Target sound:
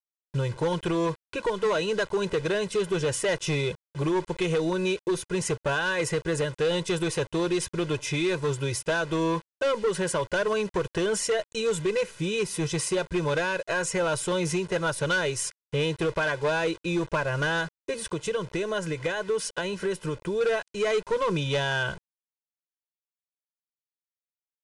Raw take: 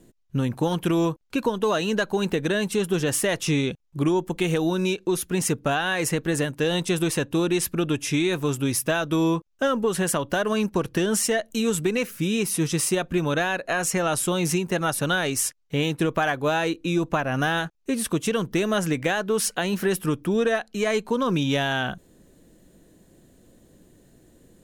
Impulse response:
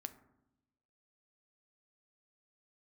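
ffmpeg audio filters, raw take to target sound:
-filter_complex "[0:a]acrusher=bits=6:mix=0:aa=0.000001,asettb=1/sr,asplit=3[s0][s1][s2];[s0]atrim=end=17.954[s3];[s1]atrim=start=17.95:end=20.41,asetpts=PTS-STARTPTS,afade=t=in:d=0.004:c=qsin,afade=t=out:st=2.456:d=0.004:c=qsin,acompressor=threshold=0.0631:ratio=3[s4];[s2]atrim=start=20.406[s5];[s3][s4]acrossfade=d=0.004:c1=hsin:c2=qsin[s6];[s6][s5]acrossfade=d=0.004:c1=qsin:c2=hsin,highshelf=f=6900:g=-7.5,aecho=1:1:2:0.96,asoftclip=type=hard:threshold=0.141,aresample=22050,aresample=44100,volume=0.668"

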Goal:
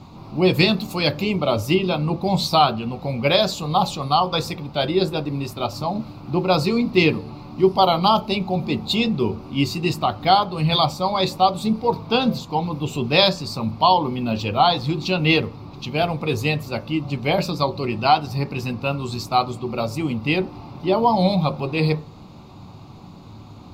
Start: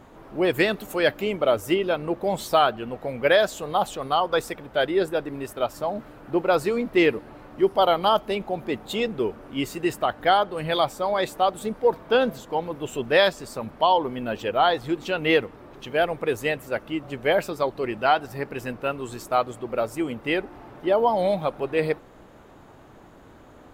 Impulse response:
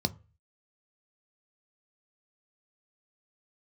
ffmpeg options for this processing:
-filter_complex "[0:a]asplit=2[s0][s1];[1:a]atrim=start_sample=2205,highshelf=f=2800:g=10.5[s2];[s1][s2]afir=irnorm=-1:irlink=0,volume=0.562[s3];[s0][s3]amix=inputs=2:normalize=0,volume=1.12"

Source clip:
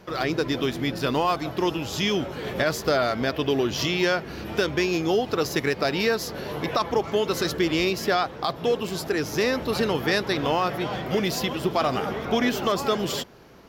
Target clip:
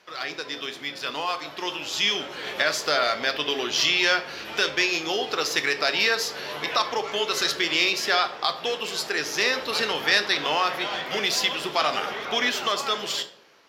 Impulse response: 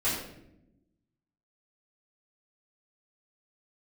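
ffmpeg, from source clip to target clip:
-filter_complex "[0:a]dynaudnorm=f=740:g=5:m=2.51,bandpass=f=3500:t=q:w=0.57:csg=0,asplit=2[s0][s1];[1:a]atrim=start_sample=2205,asetrate=74970,aresample=44100,adelay=8[s2];[s1][s2]afir=irnorm=-1:irlink=0,volume=0.211[s3];[s0][s3]amix=inputs=2:normalize=0"

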